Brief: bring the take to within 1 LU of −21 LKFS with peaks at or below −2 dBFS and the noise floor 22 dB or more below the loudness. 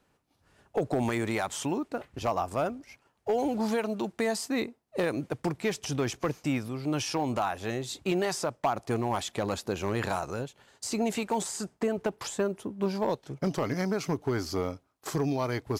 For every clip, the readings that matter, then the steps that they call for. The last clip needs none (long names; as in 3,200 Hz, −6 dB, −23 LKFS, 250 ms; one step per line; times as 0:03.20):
share of clipped samples 0.5%; peaks flattened at −19.5 dBFS; integrated loudness −31.0 LKFS; sample peak −19.5 dBFS; target loudness −21.0 LKFS
→ clipped peaks rebuilt −19.5 dBFS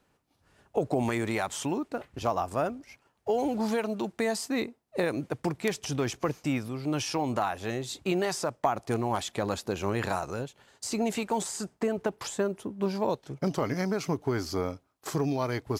share of clipped samples 0.0%; integrated loudness −31.0 LKFS; sample peak −10.5 dBFS; target loudness −21.0 LKFS
→ level +10 dB
brickwall limiter −2 dBFS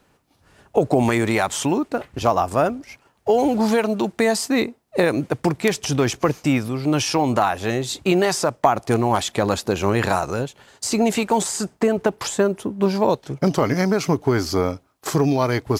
integrated loudness −21.0 LKFS; sample peak −2.0 dBFS; background noise floor −61 dBFS